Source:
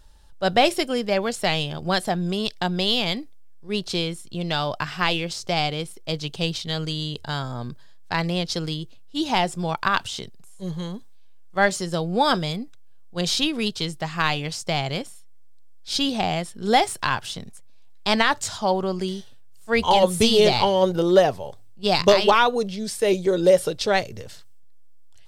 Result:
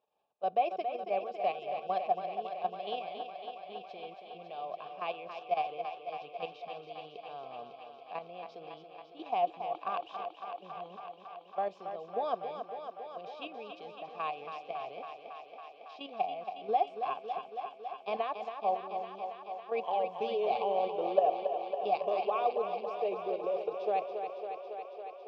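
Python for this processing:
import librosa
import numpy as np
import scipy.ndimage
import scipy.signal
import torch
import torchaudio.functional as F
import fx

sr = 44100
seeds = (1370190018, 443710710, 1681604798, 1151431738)

y = fx.level_steps(x, sr, step_db=11)
y = fx.vowel_filter(y, sr, vowel='a')
y = fx.cabinet(y, sr, low_hz=140.0, low_slope=12, high_hz=4800.0, hz=(200.0, 440.0, 1400.0, 2900.0, 4200.0), db=(5, 10, -10, -3, -7))
y = fx.echo_thinned(y, sr, ms=277, feedback_pct=82, hz=180.0, wet_db=-7.5)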